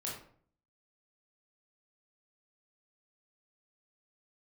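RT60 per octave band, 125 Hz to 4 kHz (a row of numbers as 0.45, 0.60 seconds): 0.70, 0.65, 0.55, 0.50, 0.45, 0.35 seconds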